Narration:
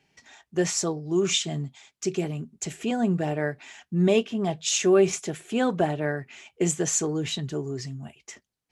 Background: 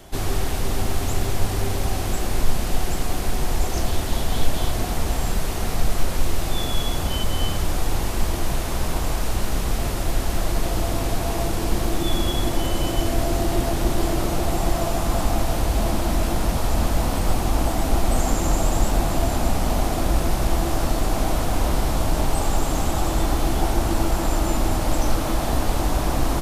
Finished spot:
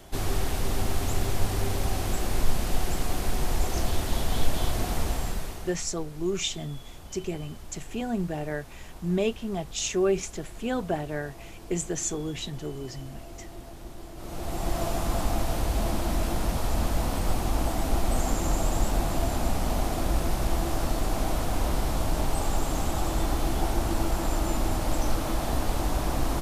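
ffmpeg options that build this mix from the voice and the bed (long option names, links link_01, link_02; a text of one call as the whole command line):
ffmpeg -i stem1.wav -i stem2.wav -filter_complex "[0:a]adelay=5100,volume=-5dB[link_01];[1:a]volume=11.5dB,afade=type=out:start_time=5:duration=0.78:silence=0.141254,afade=type=in:start_time=14.15:duration=0.68:silence=0.16788[link_02];[link_01][link_02]amix=inputs=2:normalize=0" out.wav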